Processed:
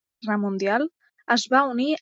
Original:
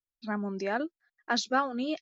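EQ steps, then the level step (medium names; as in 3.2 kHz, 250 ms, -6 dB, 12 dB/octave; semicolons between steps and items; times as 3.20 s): high-pass 51 Hz; dynamic bell 5.1 kHz, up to -5 dB, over -46 dBFS, Q 1.8; +8.5 dB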